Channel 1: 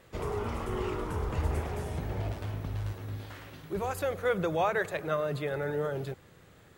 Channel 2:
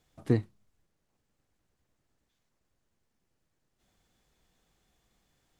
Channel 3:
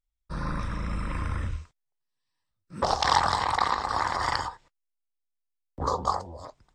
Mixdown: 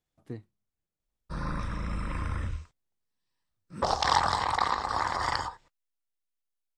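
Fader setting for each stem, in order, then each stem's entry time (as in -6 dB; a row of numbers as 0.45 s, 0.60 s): mute, -14.5 dB, -2.0 dB; mute, 0.00 s, 1.00 s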